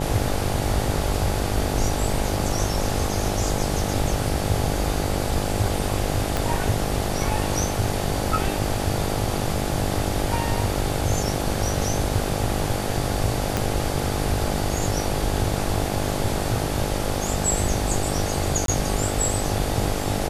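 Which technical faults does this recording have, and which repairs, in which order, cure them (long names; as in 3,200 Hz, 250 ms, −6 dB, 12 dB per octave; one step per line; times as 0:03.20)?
mains buzz 50 Hz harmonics 17 −28 dBFS
0:06.37: click −8 dBFS
0:13.57: click −7 dBFS
0:18.66–0:18.68: drop-out 22 ms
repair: click removal
hum removal 50 Hz, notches 17
repair the gap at 0:18.66, 22 ms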